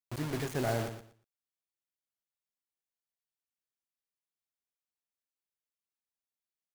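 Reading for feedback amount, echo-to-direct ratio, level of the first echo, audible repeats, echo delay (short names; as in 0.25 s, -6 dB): 21%, -9.5 dB, -9.5 dB, 2, 0.118 s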